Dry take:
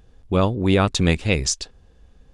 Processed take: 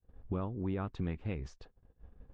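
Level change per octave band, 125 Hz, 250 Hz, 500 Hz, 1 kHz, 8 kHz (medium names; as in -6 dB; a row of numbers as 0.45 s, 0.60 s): -16.0 dB, -16.5 dB, -19.5 dB, -19.5 dB, under -35 dB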